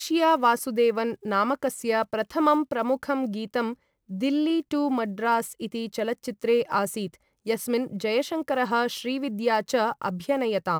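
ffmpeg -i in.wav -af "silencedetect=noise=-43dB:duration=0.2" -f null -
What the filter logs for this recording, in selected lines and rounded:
silence_start: 3.74
silence_end: 4.10 | silence_duration: 0.36
silence_start: 7.15
silence_end: 7.46 | silence_duration: 0.31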